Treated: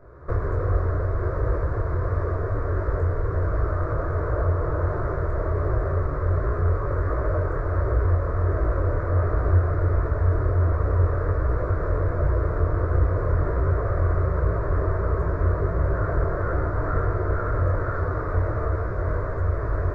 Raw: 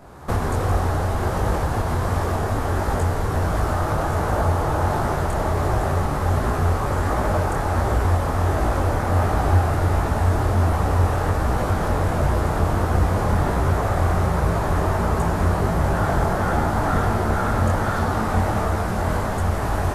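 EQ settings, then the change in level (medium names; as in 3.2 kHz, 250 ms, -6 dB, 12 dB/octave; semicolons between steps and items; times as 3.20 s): tape spacing loss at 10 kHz 43 dB; static phaser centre 810 Hz, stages 6; +1.0 dB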